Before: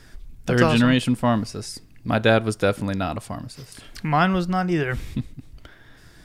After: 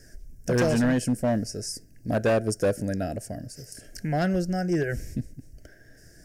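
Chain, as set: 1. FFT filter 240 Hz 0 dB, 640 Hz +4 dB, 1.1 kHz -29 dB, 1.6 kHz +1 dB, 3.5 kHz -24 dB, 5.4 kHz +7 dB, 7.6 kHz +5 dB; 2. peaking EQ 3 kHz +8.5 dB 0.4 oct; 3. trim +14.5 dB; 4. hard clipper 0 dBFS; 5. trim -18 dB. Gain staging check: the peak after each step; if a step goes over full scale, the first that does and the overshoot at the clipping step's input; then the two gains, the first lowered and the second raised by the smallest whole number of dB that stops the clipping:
-4.5 dBFS, -4.5 dBFS, +10.0 dBFS, 0.0 dBFS, -18.0 dBFS; step 3, 10.0 dB; step 3 +4.5 dB, step 5 -8 dB

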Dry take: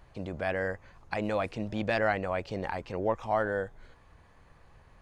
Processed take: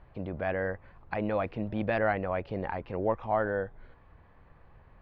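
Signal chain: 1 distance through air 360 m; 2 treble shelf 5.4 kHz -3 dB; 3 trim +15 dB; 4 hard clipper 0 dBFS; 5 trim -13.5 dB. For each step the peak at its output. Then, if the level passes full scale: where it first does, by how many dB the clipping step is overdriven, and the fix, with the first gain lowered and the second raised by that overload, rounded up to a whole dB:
-16.5 dBFS, -16.5 dBFS, -1.5 dBFS, -1.5 dBFS, -15.0 dBFS; nothing clips

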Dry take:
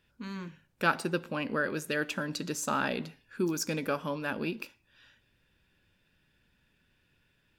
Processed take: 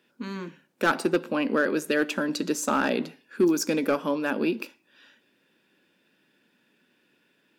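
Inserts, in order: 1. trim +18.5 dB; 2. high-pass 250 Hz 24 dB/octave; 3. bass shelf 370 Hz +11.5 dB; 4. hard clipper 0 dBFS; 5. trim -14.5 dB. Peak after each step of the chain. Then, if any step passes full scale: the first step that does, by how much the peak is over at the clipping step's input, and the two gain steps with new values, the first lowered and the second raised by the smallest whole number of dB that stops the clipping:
+6.0 dBFS, +7.0 dBFS, +9.0 dBFS, 0.0 dBFS, -14.5 dBFS; step 1, 9.0 dB; step 1 +9.5 dB, step 5 -5.5 dB

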